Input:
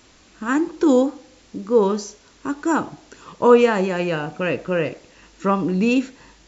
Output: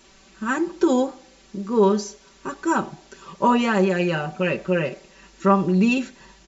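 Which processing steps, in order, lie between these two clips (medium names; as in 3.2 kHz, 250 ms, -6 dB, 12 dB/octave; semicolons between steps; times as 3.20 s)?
comb 5.2 ms, depth 96%; trim -3 dB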